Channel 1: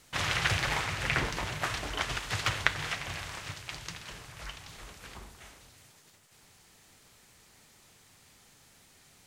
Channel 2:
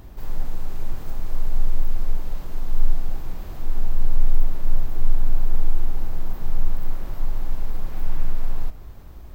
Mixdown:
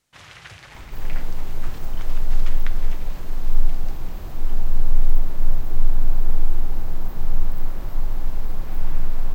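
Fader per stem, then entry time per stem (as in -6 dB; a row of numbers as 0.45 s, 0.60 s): -13.5 dB, +1.5 dB; 0.00 s, 0.75 s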